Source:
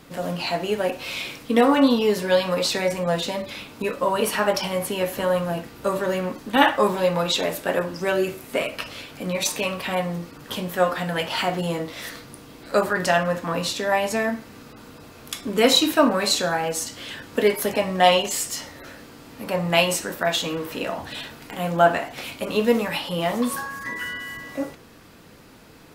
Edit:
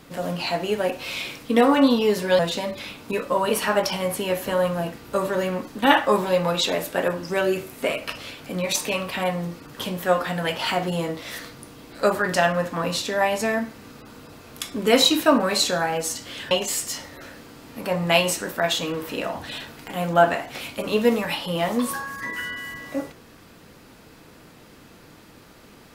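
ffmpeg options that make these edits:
ffmpeg -i in.wav -filter_complex "[0:a]asplit=3[link_01][link_02][link_03];[link_01]atrim=end=2.392[link_04];[link_02]atrim=start=3.098:end=17.222[link_05];[link_03]atrim=start=18.138[link_06];[link_04][link_05]acrossfade=duration=0.004:curve1=hsin:curve2=hsin[link_07];[link_07][link_06]acrossfade=duration=0.004:curve1=hsin:curve2=hsin" out.wav

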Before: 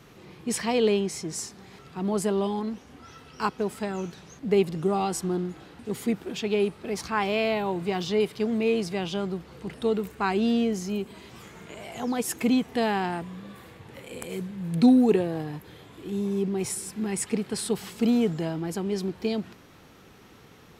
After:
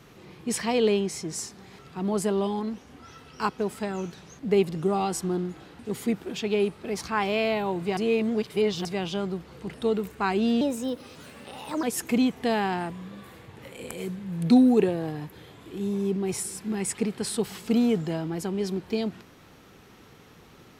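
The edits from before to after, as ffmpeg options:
ffmpeg -i in.wav -filter_complex "[0:a]asplit=5[link_01][link_02][link_03][link_04][link_05];[link_01]atrim=end=7.972[link_06];[link_02]atrim=start=7.968:end=8.852,asetpts=PTS-STARTPTS,areverse[link_07];[link_03]atrim=start=8.848:end=10.614[link_08];[link_04]atrim=start=10.61:end=12.15,asetpts=PTS-STARTPTS,asetrate=55566,aresample=44100[link_09];[link_05]atrim=start=12.146[link_10];[link_06][link_07]acrossfade=duration=0.004:curve1=hsin:curve2=hsin[link_11];[link_11][link_08]acrossfade=duration=0.004:curve1=hsin:curve2=hsin[link_12];[link_12][link_09]acrossfade=duration=0.004:curve1=hsin:curve2=hsin[link_13];[link_13][link_10]acrossfade=duration=0.004:curve1=hsin:curve2=hsin" out.wav

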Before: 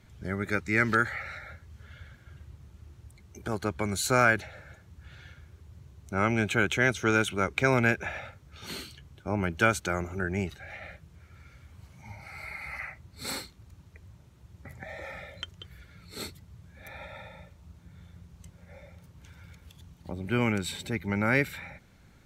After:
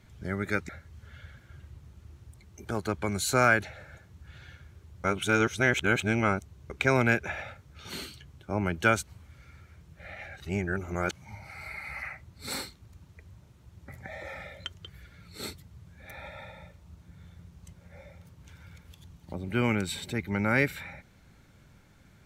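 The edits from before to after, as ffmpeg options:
ffmpeg -i in.wav -filter_complex "[0:a]asplit=6[link_01][link_02][link_03][link_04][link_05][link_06];[link_01]atrim=end=0.692[link_07];[link_02]atrim=start=1.458:end=5.812[link_08];[link_03]atrim=start=5.808:end=7.472,asetpts=PTS-STARTPTS,areverse[link_09];[link_04]atrim=start=7.468:end=9.842[link_10];[link_05]atrim=start=9.838:end=11.892,asetpts=PTS-STARTPTS,areverse[link_11];[link_06]atrim=start=11.888[link_12];[link_07][link_08]acrossfade=duration=0.004:curve1=hsin:curve2=hsin[link_13];[link_13][link_09]acrossfade=duration=0.004:curve1=hsin:curve2=hsin[link_14];[link_14][link_10]acrossfade=duration=0.004:curve1=hsin:curve2=hsin[link_15];[link_15][link_11]acrossfade=duration=0.004:curve1=hsin:curve2=hsin[link_16];[link_16][link_12]acrossfade=duration=0.004:curve1=hsin:curve2=hsin" out.wav

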